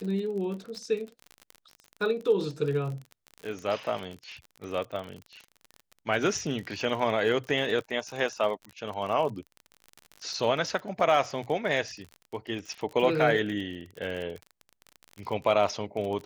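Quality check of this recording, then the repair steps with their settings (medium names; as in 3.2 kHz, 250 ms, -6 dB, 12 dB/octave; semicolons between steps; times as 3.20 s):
crackle 41 per s -34 dBFS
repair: de-click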